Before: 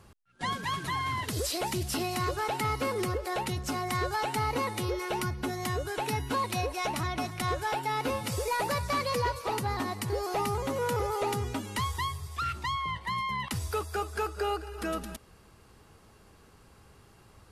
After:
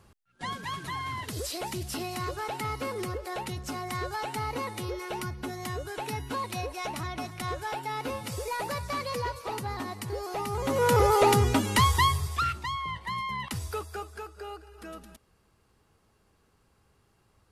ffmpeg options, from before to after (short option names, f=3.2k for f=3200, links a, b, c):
-af "volume=9.5dB,afade=t=in:st=10.49:d=0.58:silence=0.237137,afade=t=out:st=12.17:d=0.42:silence=0.298538,afade=t=out:st=13.59:d=0.67:silence=0.354813"